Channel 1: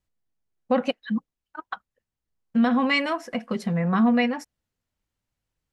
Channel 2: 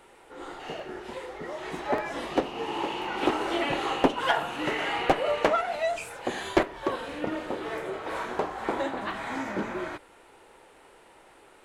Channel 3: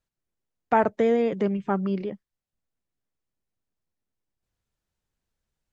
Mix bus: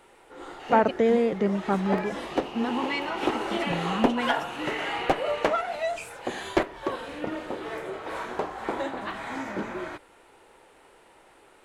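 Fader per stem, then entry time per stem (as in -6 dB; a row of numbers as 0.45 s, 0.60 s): -8.5 dB, -1.0 dB, 0.0 dB; 0.00 s, 0.00 s, 0.00 s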